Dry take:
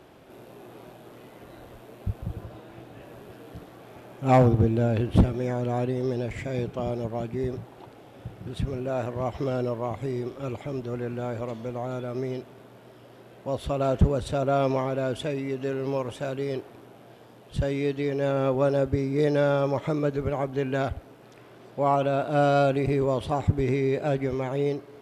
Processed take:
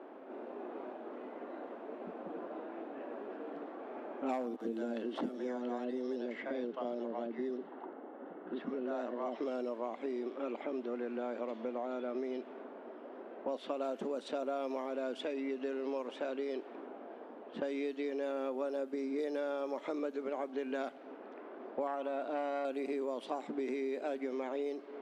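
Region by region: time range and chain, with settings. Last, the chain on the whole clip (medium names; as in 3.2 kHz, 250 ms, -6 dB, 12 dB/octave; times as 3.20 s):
4.56–9.36 s: band-stop 2.4 kHz, Q 5.6 + level-controlled noise filter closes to 1.9 kHz, open at -21 dBFS + bands offset in time highs, lows 50 ms, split 620 Hz
21.87–22.65 s: treble shelf 6.5 kHz -8 dB + transformer saturation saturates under 580 Hz
whole clip: elliptic high-pass 240 Hz, stop band 50 dB; level-controlled noise filter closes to 1.3 kHz, open at -21.5 dBFS; compression 6:1, threshold -38 dBFS; trim +3 dB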